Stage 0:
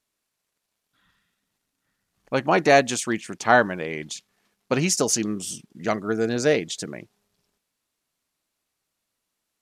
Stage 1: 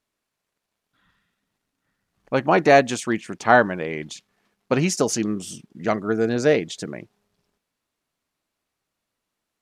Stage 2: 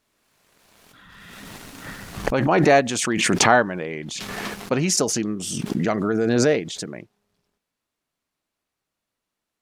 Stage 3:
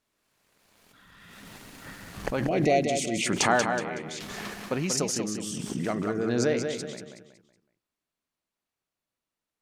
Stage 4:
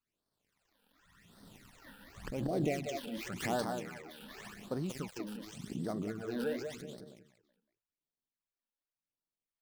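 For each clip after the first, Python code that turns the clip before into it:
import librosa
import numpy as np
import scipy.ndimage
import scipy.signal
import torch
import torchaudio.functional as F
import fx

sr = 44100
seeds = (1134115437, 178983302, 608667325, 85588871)

y1 = fx.high_shelf(x, sr, hz=3600.0, db=-8.5)
y1 = y1 * librosa.db_to_amplitude(2.5)
y2 = fx.pre_swell(y1, sr, db_per_s=23.0)
y2 = y2 * librosa.db_to_amplitude(-2.0)
y3 = fx.spec_box(y2, sr, start_s=2.46, length_s=0.81, low_hz=770.0, high_hz=1900.0, gain_db=-24)
y3 = fx.echo_feedback(y3, sr, ms=186, feedback_pct=35, wet_db=-6.0)
y3 = y3 * librosa.db_to_amplitude(-7.5)
y4 = fx.dead_time(y3, sr, dead_ms=0.08)
y4 = fx.phaser_stages(y4, sr, stages=12, low_hz=110.0, high_hz=2500.0, hz=0.89, feedback_pct=25)
y4 = y4 * librosa.db_to_amplitude(-8.0)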